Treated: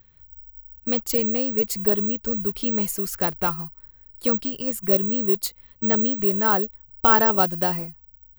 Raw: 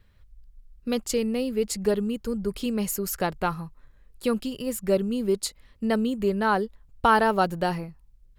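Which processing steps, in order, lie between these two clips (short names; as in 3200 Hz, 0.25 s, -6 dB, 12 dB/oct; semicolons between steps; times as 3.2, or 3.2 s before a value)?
careless resampling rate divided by 2×, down filtered, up zero stuff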